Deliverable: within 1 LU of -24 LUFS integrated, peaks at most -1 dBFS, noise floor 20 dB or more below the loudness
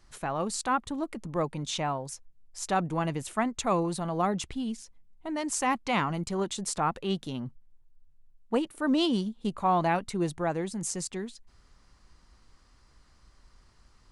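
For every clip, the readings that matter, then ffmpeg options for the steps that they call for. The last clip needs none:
loudness -30.5 LUFS; peak -15.0 dBFS; loudness target -24.0 LUFS
-> -af "volume=6.5dB"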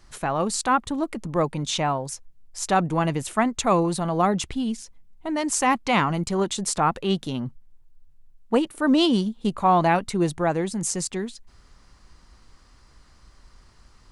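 loudness -24.0 LUFS; peak -8.5 dBFS; noise floor -54 dBFS

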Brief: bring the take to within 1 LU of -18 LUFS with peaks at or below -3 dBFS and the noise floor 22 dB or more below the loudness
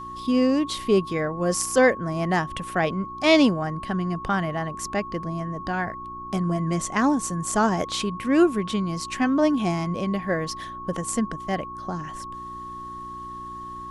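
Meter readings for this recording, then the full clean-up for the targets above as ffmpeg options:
hum 60 Hz; harmonics up to 360 Hz; hum level -43 dBFS; steady tone 1100 Hz; tone level -34 dBFS; loudness -24.5 LUFS; peak -6.5 dBFS; loudness target -18.0 LUFS
-> -af "bandreject=f=60:t=h:w=4,bandreject=f=120:t=h:w=4,bandreject=f=180:t=h:w=4,bandreject=f=240:t=h:w=4,bandreject=f=300:t=h:w=4,bandreject=f=360:t=h:w=4"
-af "bandreject=f=1.1k:w=30"
-af "volume=6.5dB,alimiter=limit=-3dB:level=0:latency=1"

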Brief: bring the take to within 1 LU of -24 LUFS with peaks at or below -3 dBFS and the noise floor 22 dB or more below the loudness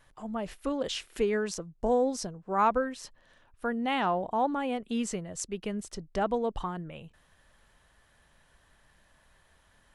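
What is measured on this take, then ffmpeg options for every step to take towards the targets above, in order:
loudness -31.0 LUFS; peak -13.5 dBFS; loudness target -24.0 LUFS
-> -af "volume=7dB"

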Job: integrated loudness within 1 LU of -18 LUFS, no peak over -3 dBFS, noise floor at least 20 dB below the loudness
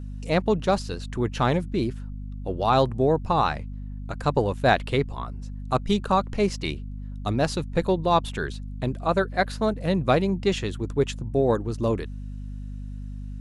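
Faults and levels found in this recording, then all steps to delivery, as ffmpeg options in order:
hum 50 Hz; harmonics up to 250 Hz; hum level -32 dBFS; loudness -25.0 LUFS; peak -5.0 dBFS; loudness target -18.0 LUFS
-> -af "bandreject=f=50:t=h:w=4,bandreject=f=100:t=h:w=4,bandreject=f=150:t=h:w=4,bandreject=f=200:t=h:w=4,bandreject=f=250:t=h:w=4"
-af "volume=7dB,alimiter=limit=-3dB:level=0:latency=1"

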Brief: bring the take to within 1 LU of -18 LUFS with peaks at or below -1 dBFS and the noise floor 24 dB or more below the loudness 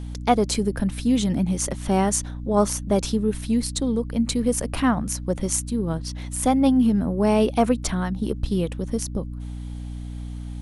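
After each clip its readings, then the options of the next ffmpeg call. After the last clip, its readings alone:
hum 60 Hz; harmonics up to 300 Hz; hum level -30 dBFS; loudness -23.0 LUFS; peak -3.5 dBFS; loudness target -18.0 LUFS
-> -af "bandreject=f=60:t=h:w=4,bandreject=f=120:t=h:w=4,bandreject=f=180:t=h:w=4,bandreject=f=240:t=h:w=4,bandreject=f=300:t=h:w=4"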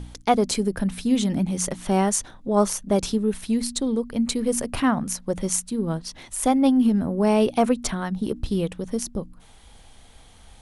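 hum none; loudness -23.5 LUFS; peak -4.5 dBFS; loudness target -18.0 LUFS
-> -af "volume=5.5dB,alimiter=limit=-1dB:level=0:latency=1"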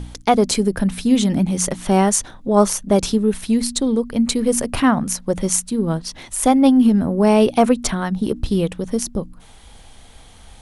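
loudness -18.0 LUFS; peak -1.0 dBFS; noise floor -44 dBFS

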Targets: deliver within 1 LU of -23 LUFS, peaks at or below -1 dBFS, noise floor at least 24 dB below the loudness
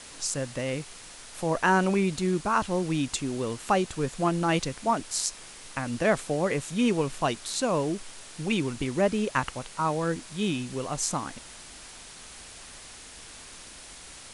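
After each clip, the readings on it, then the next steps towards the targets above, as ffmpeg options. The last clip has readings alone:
noise floor -46 dBFS; noise floor target -52 dBFS; loudness -28.0 LUFS; peak -8.0 dBFS; loudness target -23.0 LUFS
-> -af "afftdn=nr=6:nf=-46"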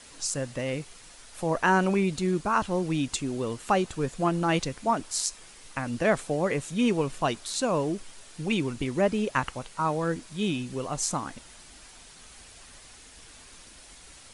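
noise floor -50 dBFS; noise floor target -52 dBFS
-> -af "afftdn=nr=6:nf=-50"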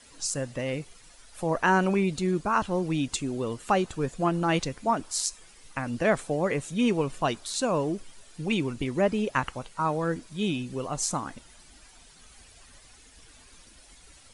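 noise floor -54 dBFS; loudness -28.0 LUFS; peak -8.0 dBFS; loudness target -23.0 LUFS
-> -af "volume=5dB"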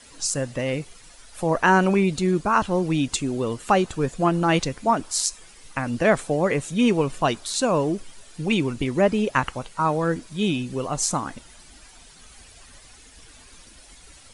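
loudness -23.0 LUFS; peak -3.0 dBFS; noise floor -49 dBFS

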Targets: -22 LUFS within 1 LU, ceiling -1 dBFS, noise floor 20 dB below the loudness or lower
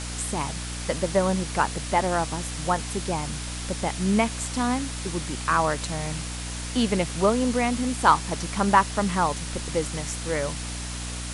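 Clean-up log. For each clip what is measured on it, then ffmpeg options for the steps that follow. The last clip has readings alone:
hum 60 Hz; harmonics up to 300 Hz; hum level -32 dBFS; noise floor -33 dBFS; noise floor target -46 dBFS; loudness -25.5 LUFS; peak -4.0 dBFS; loudness target -22.0 LUFS
-> -af "bandreject=f=60:t=h:w=6,bandreject=f=120:t=h:w=6,bandreject=f=180:t=h:w=6,bandreject=f=240:t=h:w=6,bandreject=f=300:t=h:w=6"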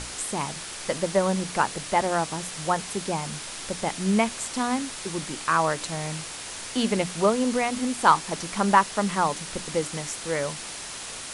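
hum none; noise floor -37 dBFS; noise floor target -46 dBFS
-> -af "afftdn=nr=9:nf=-37"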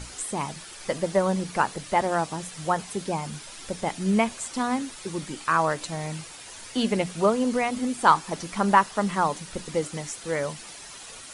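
noise floor -43 dBFS; noise floor target -47 dBFS
-> -af "afftdn=nr=6:nf=-43"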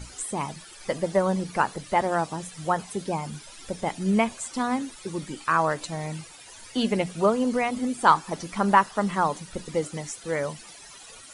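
noise floor -46 dBFS; noise floor target -47 dBFS
-> -af "afftdn=nr=6:nf=-46"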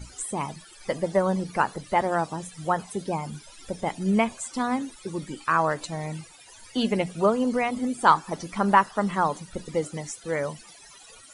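noise floor -50 dBFS; loudness -26.5 LUFS; peak -4.5 dBFS; loudness target -22.0 LUFS
-> -af "volume=4.5dB,alimiter=limit=-1dB:level=0:latency=1"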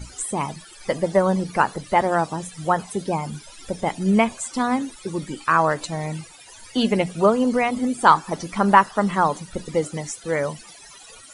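loudness -22.0 LUFS; peak -1.0 dBFS; noise floor -45 dBFS

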